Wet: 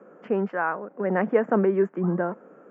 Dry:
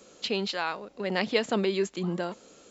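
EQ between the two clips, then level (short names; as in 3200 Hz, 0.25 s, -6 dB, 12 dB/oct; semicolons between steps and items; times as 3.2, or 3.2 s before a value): elliptic band-pass 160–1600 Hz, stop band 40 dB; +6.0 dB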